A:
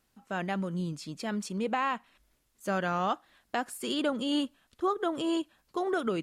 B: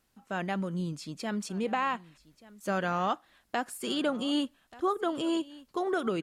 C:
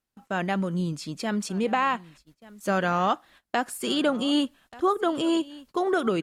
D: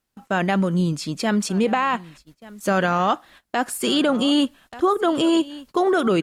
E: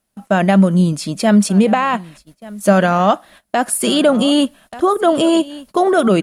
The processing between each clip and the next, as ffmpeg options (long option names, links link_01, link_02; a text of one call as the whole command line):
ffmpeg -i in.wav -af "aecho=1:1:1183:0.0944" out.wav
ffmpeg -i in.wav -af "agate=range=-18dB:threshold=-58dB:ratio=16:detection=peak,volume=5.5dB" out.wav
ffmpeg -i in.wav -af "alimiter=limit=-17.5dB:level=0:latency=1:release=23,volume=7dB" out.wav
ffmpeg -i in.wav -af "equalizer=frequency=200:width_type=o:width=0.33:gain=8,equalizer=frequency=630:width_type=o:width=0.33:gain=9,equalizer=frequency=10000:width_type=o:width=0.33:gain=10,volume=3.5dB" out.wav